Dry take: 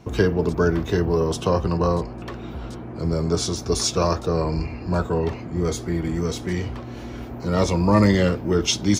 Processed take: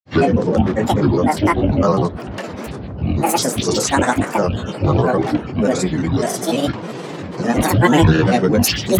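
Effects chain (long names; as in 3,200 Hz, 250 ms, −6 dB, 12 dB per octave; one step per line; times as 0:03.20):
elliptic band-pass filter 120–8,900 Hz
in parallel at 0 dB: brickwall limiter −17 dBFS, peak gain reduction 9 dB
on the sum: flutter between parallel walls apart 6.8 metres, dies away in 0.28 s
granular cloud, grains 20 per second, pitch spread up and down by 12 semitones
level +2.5 dB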